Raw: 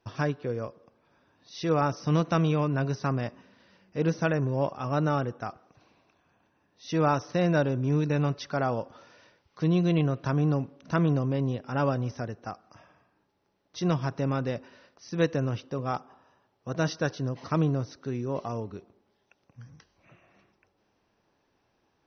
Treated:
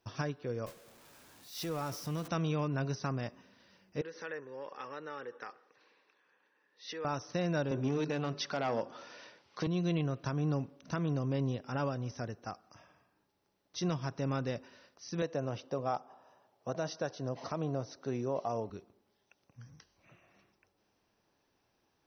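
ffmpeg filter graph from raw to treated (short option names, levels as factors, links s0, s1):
-filter_complex "[0:a]asettb=1/sr,asplit=3[s0][s1][s2];[s0]atrim=end=0.664[s3];[s1]atrim=start=0.66:end=2.28,asetpts=PTS-STARTPTS,afade=t=in:d=0.004:c=qsin,afade=t=out:st=1.616:d=0.004:c=qsin,aeval=exprs='val(0)+0.5*0.0224*sgn(val(0))':c=same,agate=range=0.0224:threshold=0.0316:ratio=3:release=100:detection=peak,acompressor=threshold=0.0178:ratio=2:attack=3.2:release=140:knee=1:detection=peak[s4];[s2]atrim=start=2.276[s5];[s3][s4]acrossfade=d=0.004:c1=hsin:c2=qsin[s6];[s6][s5]acrossfade=d=0.004:c1=qsin:c2=hsin,asettb=1/sr,asplit=3[s7][s8][s9];[s7]atrim=end=4.014[s10];[s8]atrim=start=4.01:end=7.05,asetpts=PTS-STARTPTS,afade=t=in:d=0.004:c=qsin,afade=t=out:st=3.036:d=0.004:c=qsin,bandreject=f=690:w=8.3,acompressor=threshold=0.0251:ratio=6:attack=3.2:release=140:knee=1:detection=peak,highpass=430,equalizer=f=470:t=q:w=4:g=8,equalizer=f=670:t=q:w=4:g=-7,equalizer=f=1800:t=q:w=4:g=10,lowpass=f=5100:w=0.5412,lowpass=f=5100:w=1.3066[s11];[s9]atrim=start=7.046[s12];[s10][s11]acrossfade=d=0.004:c1=hsin:c2=qsin[s13];[s13][s12]acrossfade=d=0.004:c1=qsin:c2=hsin,asettb=1/sr,asplit=3[s14][s15][s16];[s14]atrim=end=7.714[s17];[s15]atrim=start=7.71:end=9.67,asetpts=PTS-STARTPTS,afade=t=in:d=0.004:c=qsin,afade=t=out:st=1.956:d=0.004:c=qsin,bandreject=f=50:t=h:w=6,bandreject=f=100:t=h:w=6,bandreject=f=150:t=h:w=6,bandreject=f=200:t=h:w=6,bandreject=f=250:t=h:w=6,bandreject=f=300:t=h:w=6,bandreject=f=350:t=h:w=6,bandreject=f=400:t=h:w=6,aeval=exprs='0.188*sin(PI/2*1.78*val(0)/0.188)':c=same,highpass=190,lowpass=5600[s18];[s16]atrim=start=9.666[s19];[s17][s18]acrossfade=d=0.004:c1=hsin:c2=qsin[s20];[s20][s19]acrossfade=d=0.004:c1=qsin:c2=hsin,asettb=1/sr,asplit=3[s21][s22][s23];[s21]atrim=end=15.224[s24];[s22]atrim=start=15.22:end=18.7,asetpts=PTS-STARTPTS,afade=t=in:d=0.004:c=qsin,afade=t=out:st=3.476:d=0.004:c=qsin,highpass=100,equalizer=f=670:t=o:w=1.1:g=10[s25];[s23]atrim=start=18.696[s26];[s24][s25]acrossfade=d=0.004:c1=hsin:c2=qsin[s27];[s27][s26]acrossfade=d=0.004:c1=qsin:c2=hsin,highshelf=f=5300:g=10.5,alimiter=limit=0.119:level=0:latency=1:release=379,volume=0.562"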